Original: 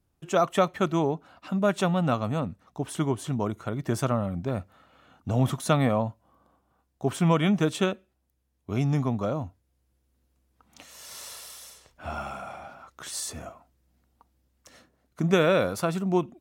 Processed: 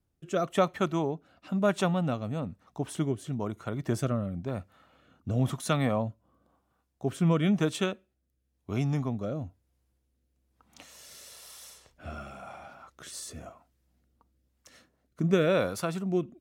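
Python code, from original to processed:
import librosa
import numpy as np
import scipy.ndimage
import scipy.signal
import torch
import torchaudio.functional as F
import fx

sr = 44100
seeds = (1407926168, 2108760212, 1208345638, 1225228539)

y = fx.rotary(x, sr, hz=1.0)
y = F.gain(torch.from_numpy(y), -1.5).numpy()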